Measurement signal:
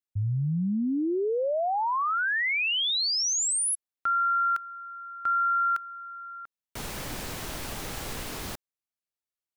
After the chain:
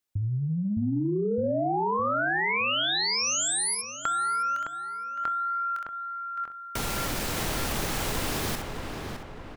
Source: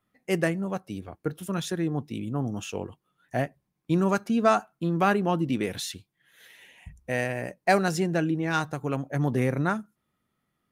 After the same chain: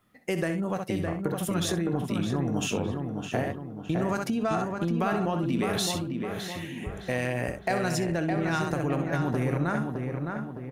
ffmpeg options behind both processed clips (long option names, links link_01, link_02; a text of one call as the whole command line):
ffmpeg -i in.wav -filter_complex "[0:a]asplit=2[link_01][link_02];[link_02]aecho=0:1:24|64:0.15|0.282[link_03];[link_01][link_03]amix=inputs=2:normalize=0,acompressor=threshold=-37dB:ratio=6:attack=18:release=43:knee=6:detection=rms,asplit=2[link_04][link_05];[link_05]adelay=612,lowpass=frequency=2400:poles=1,volume=-4.5dB,asplit=2[link_06][link_07];[link_07]adelay=612,lowpass=frequency=2400:poles=1,volume=0.51,asplit=2[link_08][link_09];[link_09]adelay=612,lowpass=frequency=2400:poles=1,volume=0.51,asplit=2[link_10][link_11];[link_11]adelay=612,lowpass=frequency=2400:poles=1,volume=0.51,asplit=2[link_12][link_13];[link_13]adelay=612,lowpass=frequency=2400:poles=1,volume=0.51,asplit=2[link_14][link_15];[link_15]adelay=612,lowpass=frequency=2400:poles=1,volume=0.51,asplit=2[link_16][link_17];[link_17]adelay=612,lowpass=frequency=2400:poles=1,volume=0.51[link_18];[link_06][link_08][link_10][link_12][link_14][link_16][link_18]amix=inputs=7:normalize=0[link_19];[link_04][link_19]amix=inputs=2:normalize=0,volume=8.5dB" out.wav